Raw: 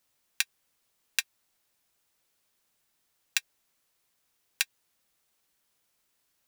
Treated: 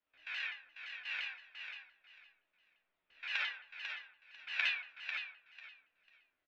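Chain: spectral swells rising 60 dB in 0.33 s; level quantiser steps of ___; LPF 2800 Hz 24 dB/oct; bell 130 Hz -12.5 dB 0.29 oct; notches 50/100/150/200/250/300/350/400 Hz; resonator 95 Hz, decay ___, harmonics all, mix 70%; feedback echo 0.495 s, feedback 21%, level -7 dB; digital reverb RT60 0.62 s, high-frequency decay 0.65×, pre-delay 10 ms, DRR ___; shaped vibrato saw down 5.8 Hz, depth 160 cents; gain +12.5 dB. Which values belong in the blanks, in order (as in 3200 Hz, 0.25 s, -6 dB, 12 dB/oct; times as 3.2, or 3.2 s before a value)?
23 dB, 0.21 s, -4.5 dB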